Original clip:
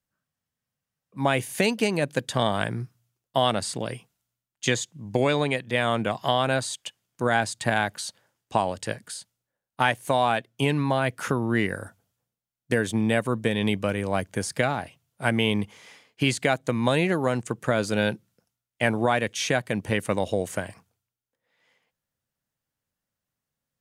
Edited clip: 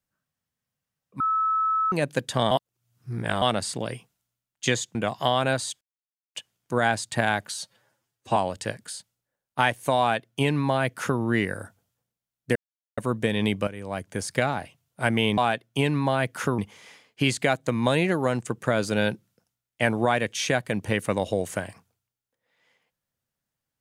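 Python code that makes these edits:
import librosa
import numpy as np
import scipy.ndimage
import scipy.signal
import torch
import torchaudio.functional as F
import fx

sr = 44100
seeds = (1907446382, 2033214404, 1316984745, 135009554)

y = fx.edit(x, sr, fx.bleep(start_s=1.2, length_s=0.72, hz=1300.0, db=-20.5),
    fx.reverse_span(start_s=2.51, length_s=0.91),
    fx.cut(start_s=4.95, length_s=1.03),
    fx.insert_silence(at_s=6.84, length_s=0.54),
    fx.stretch_span(start_s=8.03, length_s=0.55, factor=1.5),
    fx.duplicate(start_s=10.21, length_s=1.21, to_s=15.59),
    fx.silence(start_s=12.77, length_s=0.42),
    fx.fade_in_from(start_s=13.89, length_s=0.7, floor_db=-13.0), tone=tone)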